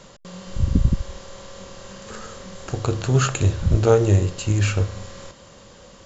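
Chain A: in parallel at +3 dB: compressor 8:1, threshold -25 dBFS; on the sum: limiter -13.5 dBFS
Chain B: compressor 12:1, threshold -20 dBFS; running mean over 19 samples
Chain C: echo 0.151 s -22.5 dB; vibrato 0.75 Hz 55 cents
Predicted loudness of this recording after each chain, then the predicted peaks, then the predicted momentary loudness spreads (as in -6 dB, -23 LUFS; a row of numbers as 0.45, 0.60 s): -25.0, -28.0, -21.0 LUFS; -13.5, -11.5, -4.0 dBFS; 12, 17, 22 LU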